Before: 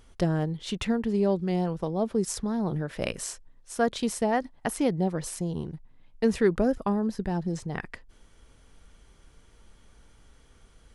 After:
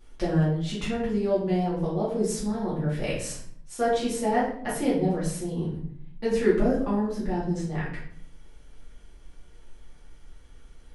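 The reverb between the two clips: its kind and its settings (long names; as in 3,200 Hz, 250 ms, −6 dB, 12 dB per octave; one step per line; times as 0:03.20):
rectangular room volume 100 cubic metres, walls mixed, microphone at 2.4 metres
level −9 dB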